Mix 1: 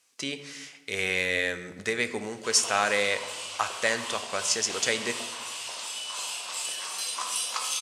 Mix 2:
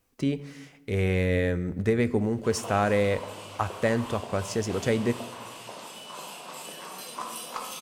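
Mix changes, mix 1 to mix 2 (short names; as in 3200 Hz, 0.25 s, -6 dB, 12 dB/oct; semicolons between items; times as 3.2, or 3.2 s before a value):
speech: send -6.5 dB; master: remove weighting filter ITU-R 468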